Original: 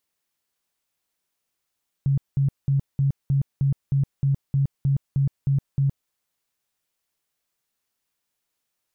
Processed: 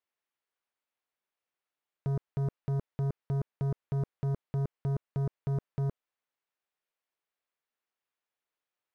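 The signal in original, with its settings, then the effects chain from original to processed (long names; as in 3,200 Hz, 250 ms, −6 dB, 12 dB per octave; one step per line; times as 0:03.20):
tone bursts 138 Hz, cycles 16, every 0.31 s, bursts 13, −17 dBFS
bass and treble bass −13 dB, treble −15 dB
leveller curve on the samples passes 3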